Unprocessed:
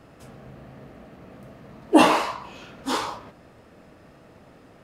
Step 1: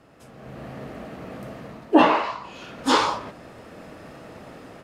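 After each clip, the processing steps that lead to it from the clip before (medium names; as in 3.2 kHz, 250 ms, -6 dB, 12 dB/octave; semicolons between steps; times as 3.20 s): low-pass that closes with the level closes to 2.8 kHz, closed at -16.5 dBFS; bass shelf 140 Hz -6 dB; level rider gain up to 12.5 dB; trim -3 dB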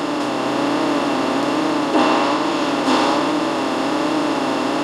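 spectral levelling over time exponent 0.2; flange 1.2 Hz, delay 6.4 ms, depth 1.4 ms, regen +45%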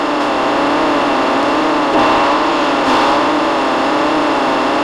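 overdrive pedal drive 18 dB, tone 2.1 kHz, clips at -2.5 dBFS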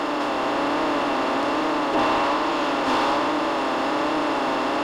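crossover distortion -43.5 dBFS; trim -9 dB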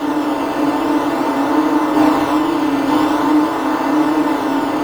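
flange 1.5 Hz, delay 7 ms, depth 3.7 ms, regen -70%; in parallel at -6 dB: decimation with a swept rate 16×, swing 100% 0.46 Hz; on the sum: FDN reverb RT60 0.31 s, low-frequency decay 1.2×, high-frequency decay 0.5×, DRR -5 dB; trim -1 dB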